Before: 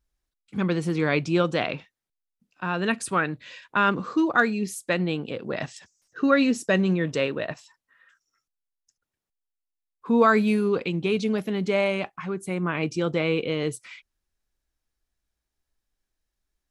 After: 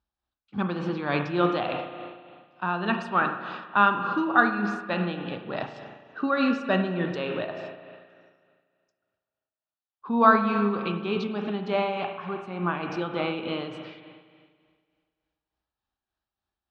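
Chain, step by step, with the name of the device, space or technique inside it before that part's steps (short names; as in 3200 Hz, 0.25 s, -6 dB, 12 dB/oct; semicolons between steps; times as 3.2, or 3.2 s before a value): combo amplifier with spring reverb and tremolo (spring tank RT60 1.9 s, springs 34/48 ms, chirp 80 ms, DRR 4 dB; tremolo 3.4 Hz, depth 45%; speaker cabinet 78–4300 Hz, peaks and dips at 150 Hz -7 dB, 300 Hz -3 dB, 470 Hz -7 dB, 810 Hz +7 dB, 1200 Hz +4 dB, 2100 Hz -9 dB)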